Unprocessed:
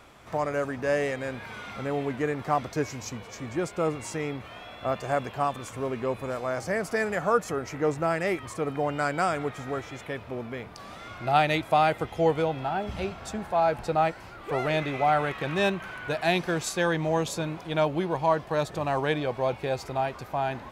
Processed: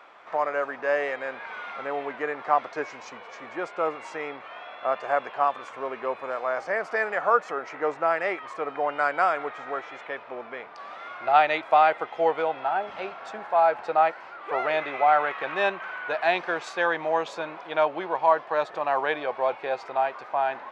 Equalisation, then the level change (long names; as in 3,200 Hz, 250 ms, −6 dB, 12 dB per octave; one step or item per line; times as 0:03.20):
high-pass filter 650 Hz 12 dB per octave
head-to-tape spacing loss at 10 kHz 29 dB
parametric band 1,400 Hz +3 dB 2 octaves
+6.0 dB